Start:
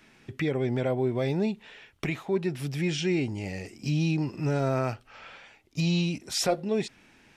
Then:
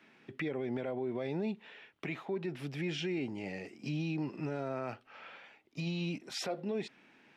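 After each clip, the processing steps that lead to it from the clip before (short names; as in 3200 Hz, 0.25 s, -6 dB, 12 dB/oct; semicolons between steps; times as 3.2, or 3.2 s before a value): three-band isolator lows -24 dB, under 150 Hz, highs -13 dB, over 4000 Hz; limiter -24.5 dBFS, peak gain reduction 10 dB; gain -3.5 dB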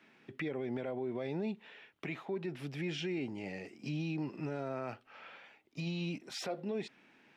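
de-esser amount 95%; gain -1.5 dB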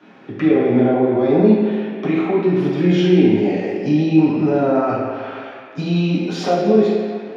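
reverb RT60 2.2 s, pre-delay 3 ms, DRR -8.5 dB; gain +4 dB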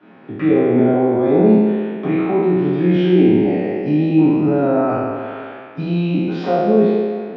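spectral trails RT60 1.35 s; air absorption 310 m; gain -1 dB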